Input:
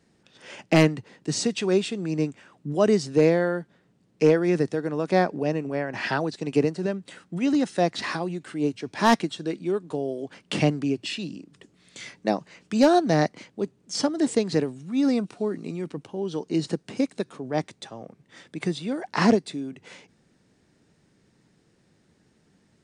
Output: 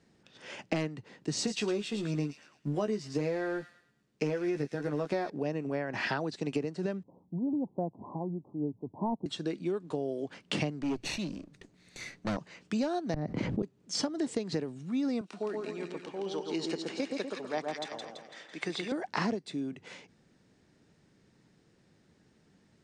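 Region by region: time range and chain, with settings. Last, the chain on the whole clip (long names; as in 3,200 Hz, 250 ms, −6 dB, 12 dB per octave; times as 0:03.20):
0:01.36–0:05.30: mu-law and A-law mismatch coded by A + double-tracking delay 14 ms −5 dB + delay with a high-pass on its return 110 ms, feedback 36%, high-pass 2,700 Hz, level −7 dB
0:07.03–0:09.26: Butterworth low-pass 1,000 Hz 96 dB per octave + parametric band 570 Hz −6.5 dB 2.3 octaves
0:10.82–0:12.37: lower of the sound and its delayed copy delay 0.47 ms + hard clipping −23 dBFS
0:13.14–0:13.63: gate with flip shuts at −18 dBFS, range −25 dB + spectral tilt −4.5 dB per octave + envelope flattener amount 70%
0:15.21–0:18.92: meter weighting curve A + echo with a time of its own for lows and highs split 1,500 Hz, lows 123 ms, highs 167 ms, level −4 dB
whole clip: low-pass filter 7,800 Hz 12 dB per octave; downward compressor 10 to 1, threshold −26 dBFS; level −2 dB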